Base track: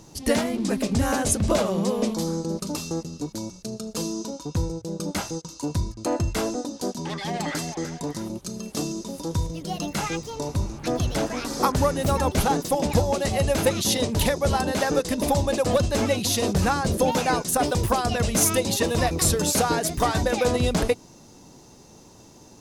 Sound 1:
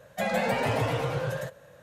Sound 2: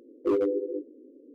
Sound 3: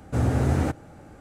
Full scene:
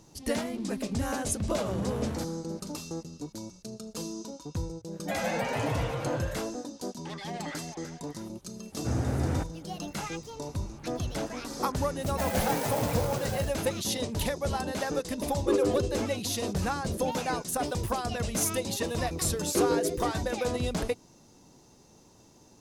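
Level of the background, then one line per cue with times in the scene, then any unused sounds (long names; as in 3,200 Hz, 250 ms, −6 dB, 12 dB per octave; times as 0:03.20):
base track −8 dB
0:01.53: mix in 3 −7.5 dB + soft clipping −24.5 dBFS
0:04.90: mix in 1 −4 dB, fades 0.05 s
0:08.72: mix in 3 −6.5 dB
0:12.00: mix in 1 −4 dB + converter with an unsteady clock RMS 0.075 ms
0:15.21: mix in 2 −1 dB
0:19.30: mix in 2 −1.5 dB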